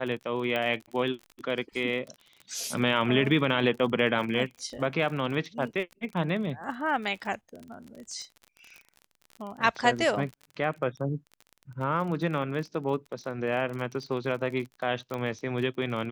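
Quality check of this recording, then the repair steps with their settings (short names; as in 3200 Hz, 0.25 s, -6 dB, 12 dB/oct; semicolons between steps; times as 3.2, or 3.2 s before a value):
crackle 35/s -36 dBFS
0.56 pop -18 dBFS
15.14 pop -20 dBFS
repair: de-click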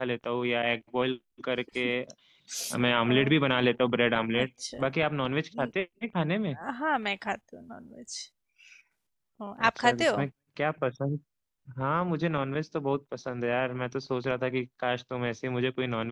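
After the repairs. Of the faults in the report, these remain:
none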